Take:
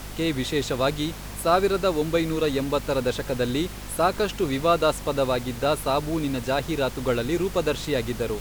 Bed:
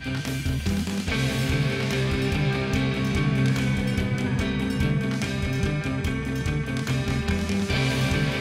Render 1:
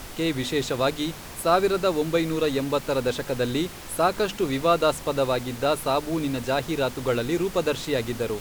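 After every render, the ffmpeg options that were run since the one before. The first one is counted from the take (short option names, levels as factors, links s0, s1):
-af "bandreject=f=50:t=h:w=6,bandreject=f=100:t=h:w=6,bandreject=f=150:t=h:w=6,bandreject=f=200:t=h:w=6,bandreject=f=250:t=h:w=6"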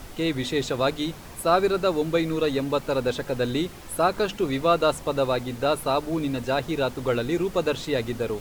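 -af "afftdn=nr=6:nf=-40"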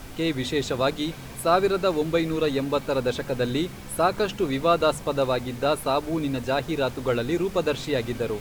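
-filter_complex "[1:a]volume=0.106[s0];[0:a][s0]amix=inputs=2:normalize=0"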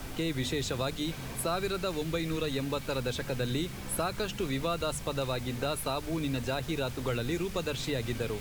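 -filter_complex "[0:a]acrossover=split=150|1600|6000[s0][s1][s2][s3];[s1]acompressor=threshold=0.0224:ratio=4[s4];[s2]alimiter=level_in=2.11:limit=0.0631:level=0:latency=1,volume=0.473[s5];[s0][s4][s5][s3]amix=inputs=4:normalize=0"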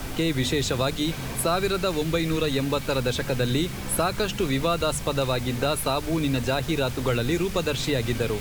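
-af "volume=2.37"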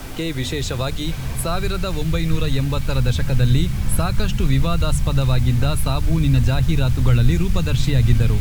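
-af "asubboost=boost=10:cutoff=130"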